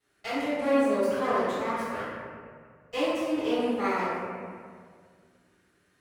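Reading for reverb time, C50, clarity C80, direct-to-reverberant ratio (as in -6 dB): 2.0 s, -4.5 dB, -0.5 dB, -18.5 dB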